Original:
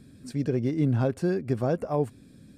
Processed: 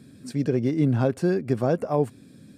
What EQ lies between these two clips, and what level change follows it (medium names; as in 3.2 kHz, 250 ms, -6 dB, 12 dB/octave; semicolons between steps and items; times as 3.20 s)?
high-pass 110 Hz; +3.5 dB